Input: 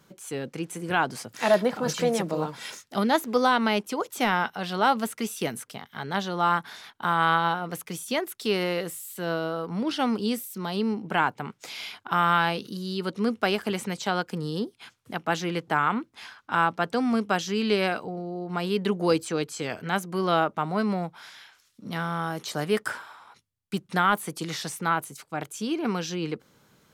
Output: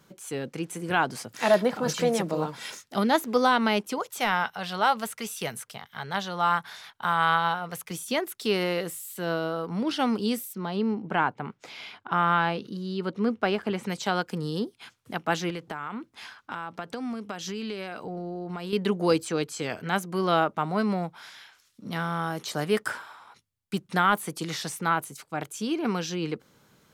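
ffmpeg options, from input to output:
ffmpeg -i in.wav -filter_complex "[0:a]asettb=1/sr,asplit=3[link_01][link_02][link_03];[link_01]atrim=end=3.984[link_04];[link_02]atrim=start=3.98:end=7.91,asetpts=PTS-STARTPTS,afade=type=in:duration=0.004:curve=qsin,afade=type=out:start_time=3.926:duration=0.004:curve=qsin,equalizer=frequency=290:width=1.5:gain=-11.5[link_05];[link_03]atrim=start=7.906[link_06];[link_04][link_05]acrossfade=duration=0.004:curve1=hsin:curve2=qsin[link_07];[link_07][link_06]acrossfade=duration=0.004:curve1=qsin:curve2=hsin,asplit=3[link_08][link_09][link_10];[link_08]afade=type=out:start_time=10.52:duration=0.02[link_11];[link_09]aemphasis=mode=reproduction:type=75kf,afade=type=in:start_time=10.52:duration=0.02,afade=type=out:start_time=13.83:duration=0.02[link_12];[link_10]afade=type=in:start_time=13.83:duration=0.02[link_13];[link_11][link_12][link_13]amix=inputs=3:normalize=0,asettb=1/sr,asplit=3[link_14][link_15][link_16];[link_14]atrim=end=15.504[link_17];[link_15]atrim=start=15.5:end=18.73,asetpts=PTS-STARTPTS,afade=type=in:duration=0.004:curve=qsin,afade=type=out:start_time=3.226:duration=0.004:curve=qsin,acompressor=threshold=-30dB:ratio=8:attack=3.2:release=140:knee=1:detection=peak[link_18];[link_16]atrim=start=18.726[link_19];[link_17][link_18]acrossfade=duration=0.004:curve1=hsin:curve2=qsin[link_20];[link_20][link_19]acrossfade=duration=0.004:curve1=qsin:curve2=hsin" out.wav

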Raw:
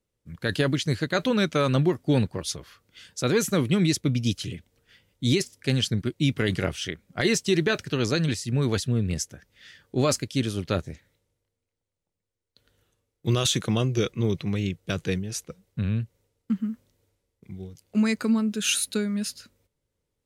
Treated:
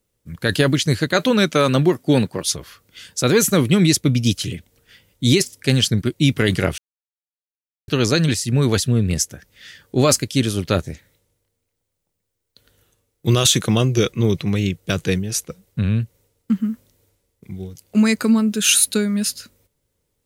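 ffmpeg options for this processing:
ffmpeg -i in.wav -filter_complex "[0:a]asettb=1/sr,asplit=3[link_01][link_02][link_03];[link_01]atrim=end=1.124[link_04];[link_02]atrim=start=1.12:end=2.47,asetpts=PTS-STARTPTS,afade=type=in:duration=0.004:curve=qsin,afade=type=out:start_time=1.346:duration=0.004:curve=qsin,highpass=140[link_05];[link_03]atrim=start=2.466[link_06];[link_04][link_05]acrossfade=duration=0.004:curve1=hsin:curve2=qsin[link_07];[link_07][link_06]acrossfade=duration=0.004:curve1=qsin:curve2=hsin,asplit=3[link_08][link_09][link_10];[link_08]atrim=end=6.78,asetpts=PTS-STARTPTS,afade=type=out:start_time=6.776:duration=0.004:curve=hsin[link_11];[link_09]atrim=start=6.78:end=7.88,asetpts=PTS-STARTPTS,volume=0[link_12];[link_10]atrim=start=7.88,asetpts=PTS-STARTPTS,afade=type=in:duration=0.004:curve=hsin[link_13];[link_11][link_12][link_13]concat=n=3:v=0:a=1,highshelf=frequency=8900:gain=9.5,volume=7dB" out.wav

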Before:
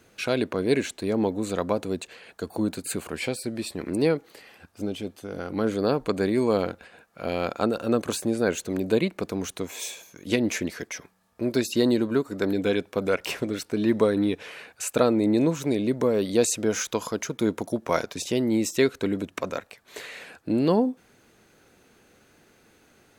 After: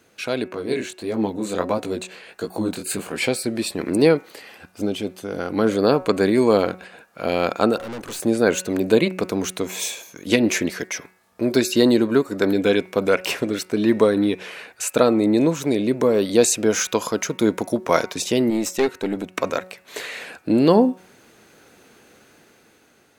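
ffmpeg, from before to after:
ffmpeg -i in.wav -filter_complex "[0:a]asettb=1/sr,asplit=3[link_01][link_02][link_03];[link_01]atrim=end=0.484[link_04];[link_02]atrim=start=0.48:end=3.18,asetpts=PTS-STARTPTS,afade=type=in:duration=0.004:curve=qsin,afade=type=out:start_time=2.696:duration=0.004:curve=qsin,flanger=delay=17:depth=7.4:speed=1.5[link_05];[link_03]atrim=start=3.176[link_06];[link_04][link_05]acrossfade=duration=0.004:curve1=hsin:curve2=qsin[link_07];[link_07][link_06]acrossfade=duration=0.004:curve1=qsin:curve2=hsin,asettb=1/sr,asplit=3[link_08][link_09][link_10];[link_08]atrim=end=7.784[link_11];[link_09]atrim=start=7.78:end=8.2,asetpts=PTS-STARTPTS,afade=type=in:duration=0.004:curve=qsin,afade=type=out:start_time=0.416:duration=0.004:curve=qsin,aeval=exprs='(tanh(63.1*val(0)+0.75)-tanh(0.75))/63.1':channel_layout=same[link_12];[link_10]atrim=start=8.196[link_13];[link_11][link_12]acrossfade=duration=0.004:curve1=hsin:curve2=qsin[link_14];[link_14][link_13]acrossfade=duration=0.004:curve1=qsin:curve2=hsin,asettb=1/sr,asplit=3[link_15][link_16][link_17];[link_15]atrim=end=18.504[link_18];[link_16]atrim=start=18.5:end=19.38,asetpts=PTS-STARTPTS,afade=type=in:duration=0.004:curve=qsin,afade=type=out:start_time=0.876:duration=0.004:curve=qsin,aeval=exprs='(tanh(7.08*val(0)+0.7)-tanh(0.7))/7.08':channel_layout=same[link_19];[link_17]atrim=start=19.376[link_20];[link_18][link_19]acrossfade=duration=0.004:curve1=hsin:curve2=qsin[link_21];[link_21][link_20]acrossfade=duration=0.004:curve1=qsin:curve2=hsin,dynaudnorm=framelen=260:gausssize=9:maxgain=8dB,lowshelf=frequency=90:gain=-11.5,bandreject=frequency=185.1:width_type=h:width=4,bandreject=frequency=370.2:width_type=h:width=4,bandreject=frequency=555.3:width_type=h:width=4,bandreject=frequency=740.4:width_type=h:width=4,bandreject=frequency=925.5:width_type=h:width=4,bandreject=frequency=1110.6:width_type=h:width=4,bandreject=frequency=1295.7:width_type=h:width=4,bandreject=frequency=1480.8:width_type=h:width=4,bandreject=frequency=1665.9:width_type=h:width=4,bandreject=frequency=1851:width_type=h:width=4,bandreject=frequency=2036.1:width_type=h:width=4,bandreject=frequency=2221.2:width_type=h:width=4,bandreject=frequency=2406.3:width_type=h:width=4,bandreject=frequency=2591.4:width_type=h:width=4,bandreject=frequency=2776.5:width_type=h:width=4,volume=1dB" out.wav

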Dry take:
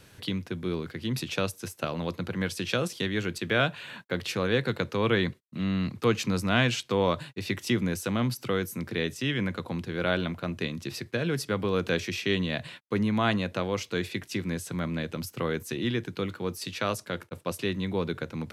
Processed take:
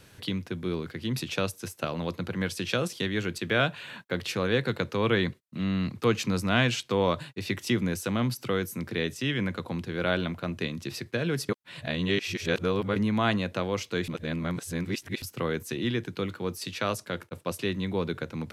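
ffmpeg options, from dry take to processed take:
ffmpeg -i in.wav -filter_complex "[0:a]asplit=5[link_01][link_02][link_03][link_04][link_05];[link_01]atrim=end=11.492[link_06];[link_02]atrim=start=11.488:end=12.962,asetpts=PTS-STARTPTS,areverse[link_07];[link_03]atrim=start=12.958:end=14.082[link_08];[link_04]atrim=start=14.078:end=15.222,asetpts=PTS-STARTPTS,areverse[link_09];[link_05]atrim=start=15.218[link_10];[link_06][link_07]acrossfade=duration=0.004:curve1=hsin:curve2=hsin[link_11];[link_11][link_08]acrossfade=duration=0.004:curve1=hsin:curve2=hsin[link_12];[link_12][link_09]acrossfade=duration=0.004:curve1=hsin:curve2=hsin[link_13];[link_13][link_10]acrossfade=duration=0.004:curve1=hsin:curve2=hsin" out.wav

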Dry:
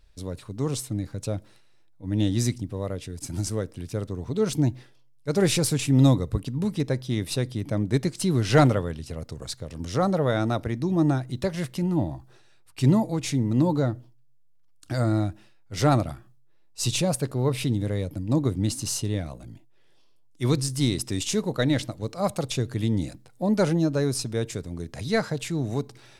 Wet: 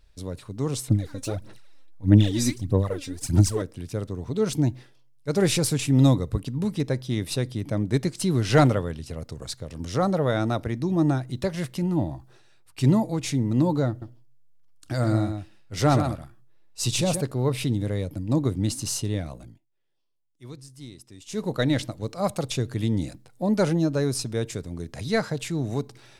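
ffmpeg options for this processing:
ffmpeg -i in.wav -filter_complex "[0:a]asettb=1/sr,asplit=3[link_01][link_02][link_03];[link_01]atrim=end=0.884[link_04];[link_02]atrim=start=0.88:end=3.62,asetpts=PTS-STARTPTS,afade=type=in:duration=0.004:curve=qsin,afade=type=out:start_time=2.736:duration=0.004:curve=qsin,aphaser=in_gain=1:out_gain=1:delay=3.8:decay=0.76:speed=1.6:type=sinusoidal[link_05];[link_03]atrim=start=3.616[link_06];[link_04][link_05]acrossfade=duration=0.004:curve1=hsin:curve2=qsin[link_07];[link_07][link_06]acrossfade=duration=0.004:curve1=qsin:curve2=hsin,asettb=1/sr,asplit=3[link_08][link_09][link_10];[link_08]atrim=end=13.894[link_11];[link_09]atrim=start=13.89:end=17.21,asetpts=PTS-STARTPTS,afade=type=in:duration=0.004:curve=qsin,afade=type=out:start_time=3.316:duration=0.004:curve=qsin,aecho=1:1:127:0.422,atrim=end_sample=146412[link_12];[link_10]atrim=start=17.206[link_13];[link_11][link_12]acrossfade=duration=0.004:curve1=hsin:curve2=qsin[link_14];[link_14][link_13]acrossfade=duration=0.004:curve1=qsin:curve2=hsin,asplit=3[link_15][link_16][link_17];[link_15]atrim=end=19.6,asetpts=PTS-STARTPTS,afade=type=out:start_time=19.41:duration=0.19:silence=0.11885[link_18];[link_16]atrim=start=19.6:end=21.27,asetpts=PTS-STARTPTS,volume=-18.5dB[link_19];[link_17]atrim=start=21.27,asetpts=PTS-STARTPTS,afade=type=in:duration=0.19:silence=0.11885[link_20];[link_18][link_19][link_20]concat=n=3:v=0:a=1" out.wav

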